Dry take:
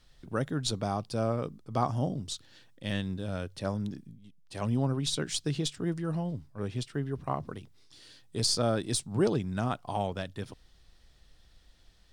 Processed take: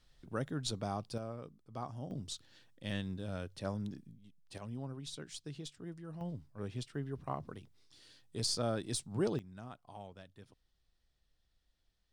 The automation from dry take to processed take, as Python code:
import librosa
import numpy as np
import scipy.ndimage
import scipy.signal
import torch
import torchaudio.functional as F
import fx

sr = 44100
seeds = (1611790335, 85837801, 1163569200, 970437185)

y = fx.gain(x, sr, db=fx.steps((0.0, -6.5), (1.18, -14.0), (2.11, -6.0), (4.58, -14.5), (6.21, -7.0), (9.39, -18.0)))